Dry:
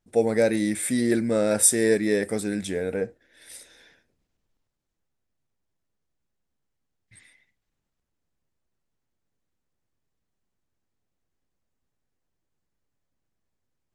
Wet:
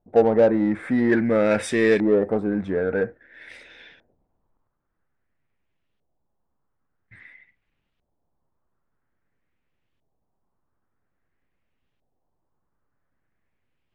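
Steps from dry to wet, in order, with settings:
auto-filter low-pass saw up 0.5 Hz 690–3,200 Hz
in parallel at −3 dB: soft clipping −24 dBFS, distortion −7 dB

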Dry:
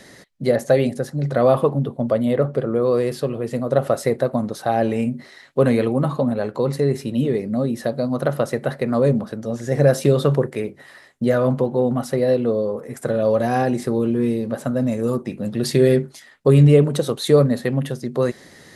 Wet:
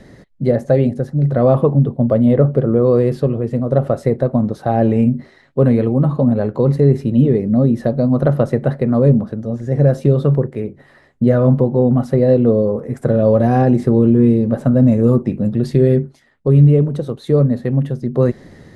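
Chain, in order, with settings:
spectral tilt −3.5 dB per octave
automatic gain control
level −1 dB

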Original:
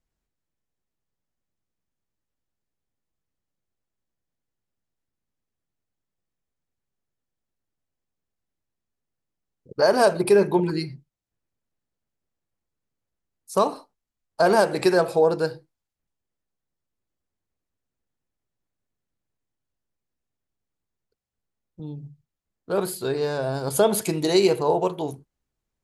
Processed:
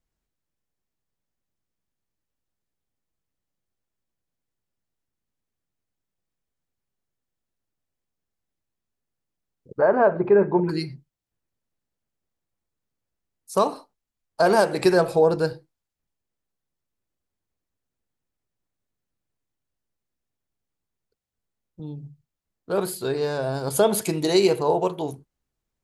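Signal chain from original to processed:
0:09.78–0:10.69: low-pass filter 1,800 Hz 24 dB per octave
0:14.84–0:15.53: low-shelf EQ 130 Hz +10 dB

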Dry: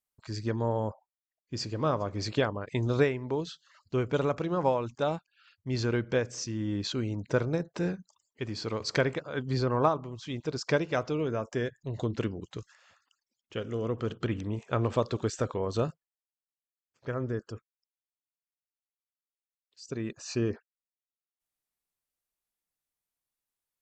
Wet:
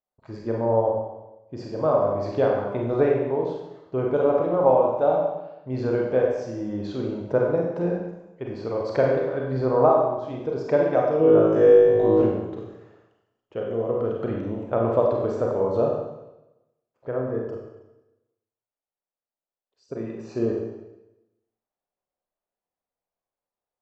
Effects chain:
low-pass filter 1,100 Hz 6 dB per octave
parametric band 640 Hz +13 dB 1.6 octaves
0:11.18–0:12.22: flutter between parallel walls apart 3.2 metres, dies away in 1.2 s
four-comb reverb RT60 0.97 s, combs from 31 ms, DRR −1.5 dB
level −3.5 dB

